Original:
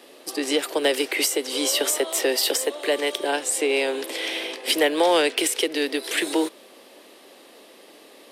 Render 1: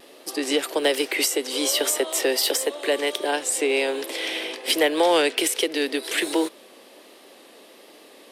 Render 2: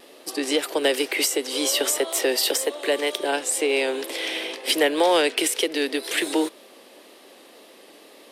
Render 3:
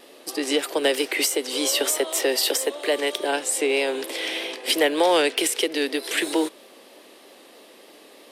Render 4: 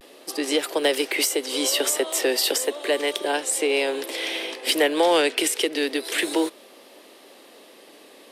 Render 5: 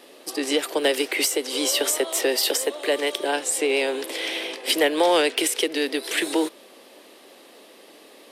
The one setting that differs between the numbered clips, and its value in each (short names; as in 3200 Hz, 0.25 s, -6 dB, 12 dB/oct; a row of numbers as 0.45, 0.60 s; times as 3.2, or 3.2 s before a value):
vibrato, rate: 1.3, 2, 3.2, 0.33, 8.8 Hz